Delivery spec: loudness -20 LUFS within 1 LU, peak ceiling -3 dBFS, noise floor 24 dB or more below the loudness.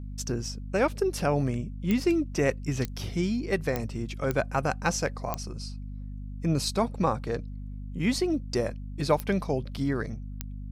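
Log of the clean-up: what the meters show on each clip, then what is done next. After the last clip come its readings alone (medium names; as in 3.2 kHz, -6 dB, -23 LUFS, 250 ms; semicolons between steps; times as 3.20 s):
clicks found 7; hum 50 Hz; highest harmonic 250 Hz; hum level -35 dBFS; loudness -29.0 LUFS; peak level -10.0 dBFS; loudness target -20.0 LUFS
-> de-click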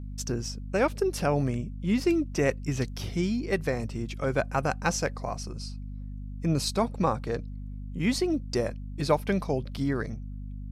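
clicks found 0; hum 50 Hz; highest harmonic 250 Hz; hum level -35 dBFS
-> hum notches 50/100/150/200/250 Hz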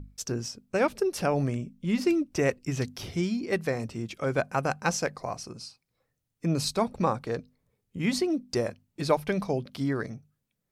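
hum not found; loudness -29.5 LUFS; peak level -9.5 dBFS; loudness target -20.0 LUFS
-> trim +9.5 dB; peak limiter -3 dBFS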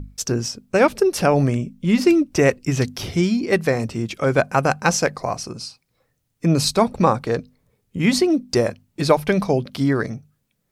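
loudness -20.0 LUFS; peak level -3.0 dBFS; noise floor -72 dBFS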